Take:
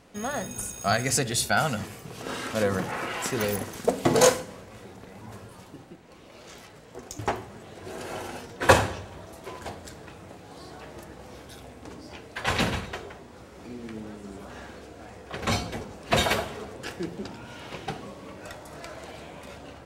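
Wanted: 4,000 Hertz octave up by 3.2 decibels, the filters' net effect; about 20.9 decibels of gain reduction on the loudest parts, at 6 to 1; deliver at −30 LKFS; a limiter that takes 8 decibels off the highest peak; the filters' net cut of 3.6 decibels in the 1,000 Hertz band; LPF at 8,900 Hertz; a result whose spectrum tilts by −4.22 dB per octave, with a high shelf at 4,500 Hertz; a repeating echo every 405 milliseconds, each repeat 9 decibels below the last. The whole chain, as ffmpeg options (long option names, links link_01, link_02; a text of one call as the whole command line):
ffmpeg -i in.wav -af "lowpass=8900,equalizer=frequency=1000:width_type=o:gain=-5,equalizer=frequency=4000:width_type=o:gain=8.5,highshelf=frequency=4500:gain=-8.5,acompressor=threshold=-36dB:ratio=6,alimiter=level_in=6.5dB:limit=-24dB:level=0:latency=1,volume=-6.5dB,aecho=1:1:405|810|1215|1620:0.355|0.124|0.0435|0.0152,volume=12dB" out.wav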